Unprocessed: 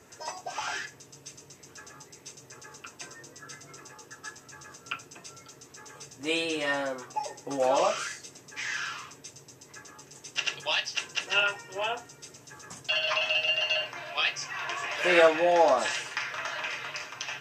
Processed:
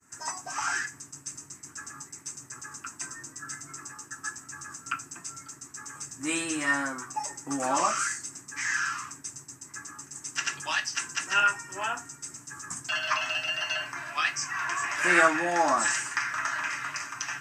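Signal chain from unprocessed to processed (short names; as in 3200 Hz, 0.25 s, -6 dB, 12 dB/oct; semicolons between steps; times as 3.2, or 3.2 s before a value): EQ curve 190 Hz 0 dB, 300 Hz +3 dB, 480 Hz -15 dB, 1200 Hz +5 dB, 1700 Hz +5 dB, 3500 Hz -8 dB, 8300 Hz +12 dB, 12000 Hz +1 dB; expander -46 dBFS; bell 3100 Hz -2.5 dB 1.4 oct; gain +2 dB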